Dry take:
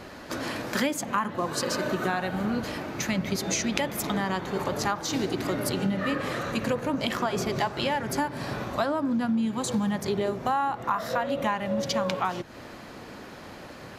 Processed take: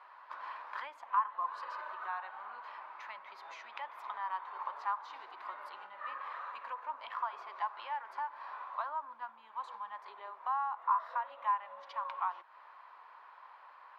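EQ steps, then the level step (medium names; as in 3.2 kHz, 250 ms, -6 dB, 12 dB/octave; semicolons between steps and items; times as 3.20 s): ladder high-pass 940 Hz, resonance 75%; distance through air 400 m; treble shelf 7.7 kHz +3.5 dB; -1.5 dB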